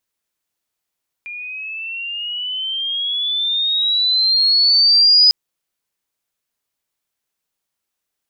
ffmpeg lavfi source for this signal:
-f lavfi -i "aevalsrc='pow(10,(-27.5+20.5*t/4.05)/20)*sin(2*PI*2400*4.05/log(5000/2400)*(exp(log(5000/2400)*t/4.05)-1))':d=4.05:s=44100"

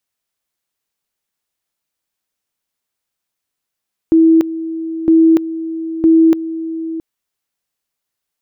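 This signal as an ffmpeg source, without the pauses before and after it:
-f lavfi -i "aevalsrc='pow(10,(-5.5-14*gte(mod(t,0.96),0.29))/20)*sin(2*PI*325*t)':d=2.88:s=44100"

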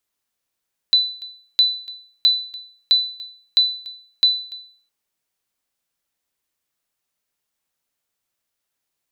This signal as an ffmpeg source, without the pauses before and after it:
-f lavfi -i "aevalsrc='0.422*(sin(2*PI*3990*mod(t,0.66))*exp(-6.91*mod(t,0.66)/0.5)+0.0891*sin(2*PI*3990*max(mod(t,0.66)-0.29,0))*exp(-6.91*max(mod(t,0.66)-0.29,0)/0.5))':d=3.96:s=44100"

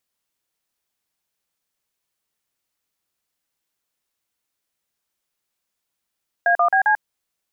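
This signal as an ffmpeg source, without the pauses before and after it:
-f lavfi -i "aevalsrc='0.158*clip(min(mod(t,0.133),0.092-mod(t,0.133))/0.002,0,1)*(eq(floor(t/0.133),0)*(sin(2*PI*697*mod(t,0.133))+sin(2*PI*1633*mod(t,0.133)))+eq(floor(t/0.133),1)*(sin(2*PI*697*mod(t,0.133))+sin(2*PI*1209*mod(t,0.133)))+eq(floor(t/0.133),2)*(sin(2*PI*770*mod(t,0.133))+sin(2*PI*1633*mod(t,0.133)))+eq(floor(t/0.133),3)*(sin(2*PI*852*mod(t,0.133))+sin(2*PI*1633*mod(t,0.133))))':d=0.532:s=44100"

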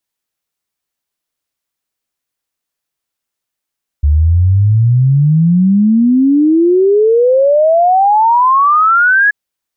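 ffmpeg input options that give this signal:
-f lavfi -i "aevalsrc='0.501*clip(min(t,5.28-t)/0.01,0,1)*sin(2*PI*71*5.28/log(1700/71)*(exp(log(1700/71)*t/5.28)-1))':d=5.28:s=44100"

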